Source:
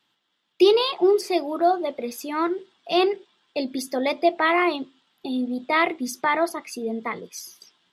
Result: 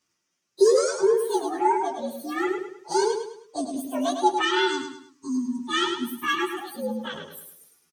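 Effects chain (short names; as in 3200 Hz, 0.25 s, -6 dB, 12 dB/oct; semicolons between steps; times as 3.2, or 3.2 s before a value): inharmonic rescaling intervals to 122%; feedback echo 0.104 s, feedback 37%, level -6.5 dB; spectral delete 4.42–6.58, 400–860 Hz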